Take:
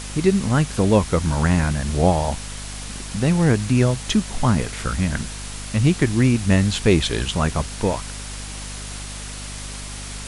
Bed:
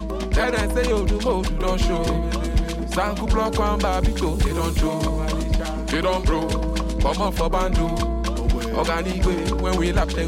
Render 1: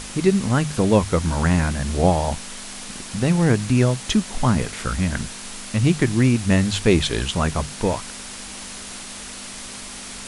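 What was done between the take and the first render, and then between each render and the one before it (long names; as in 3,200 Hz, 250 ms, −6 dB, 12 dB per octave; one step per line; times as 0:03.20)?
mains-hum notches 50/100/150 Hz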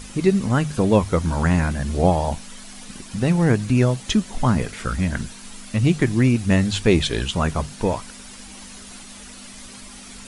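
broadband denoise 9 dB, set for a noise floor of −36 dBFS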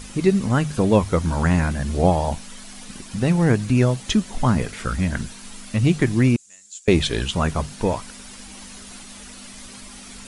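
0:06.36–0:06.88: resonant band-pass 7,200 Hz, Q 7.8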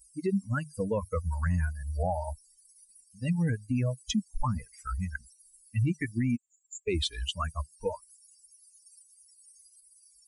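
spectral dynamics exaggerated over time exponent 3
brickwall limiter −20.5 dBFS, peak gain reduction 11 dB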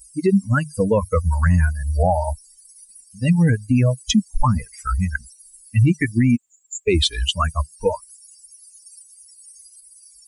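level +12 dB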